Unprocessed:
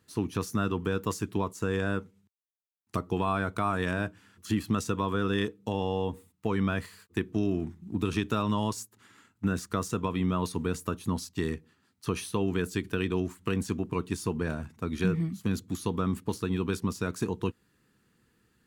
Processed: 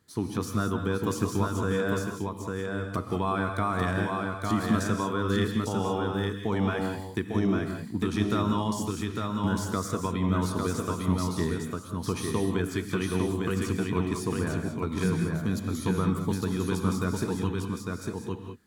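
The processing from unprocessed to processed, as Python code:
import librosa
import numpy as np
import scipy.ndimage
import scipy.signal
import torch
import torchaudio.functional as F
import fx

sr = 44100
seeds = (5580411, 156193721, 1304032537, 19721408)

y = fx.peak_eq(x, sr, hz=520.0, db=-2.0, octaves=0.32)
y = fx.notch(y, sr, hz=2700.0, q=6.5)
y = y + 10.0 ** (-3.5 / 20.0) * np.pad(y, (int(852 * sr / 1000.0), 0))[:len(y)]
y = fx.rev_gated(y, sr, seeds[0], gate_ms=220, shape='rising', drr_db=5.0)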